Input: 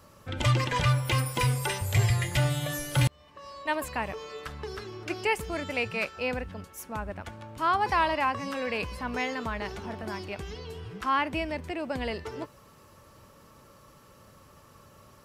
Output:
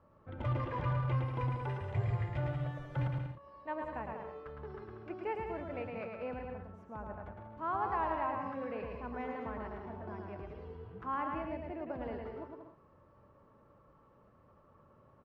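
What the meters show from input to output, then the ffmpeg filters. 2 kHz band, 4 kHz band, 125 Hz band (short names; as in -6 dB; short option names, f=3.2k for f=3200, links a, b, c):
-15.5 dB, under -20 dB, -8.0 dB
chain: -af "lowpass=1.1k,lowshelf=f=410:g=-3,aecho=1:1:110|187|240.9|278.6|305:0.631|0.398|0.251|0.158|0.1,volume=-7.5dB"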